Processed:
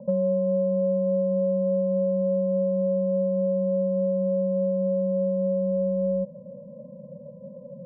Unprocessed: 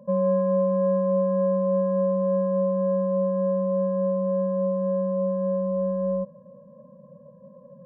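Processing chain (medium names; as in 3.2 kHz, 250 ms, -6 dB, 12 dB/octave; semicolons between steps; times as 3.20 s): Chebyshev low-pass 950 Hz, order 8; compression 3:1, threshold -30 dBFS, peak gain reduction 8.5 dB; trim +6.5 dB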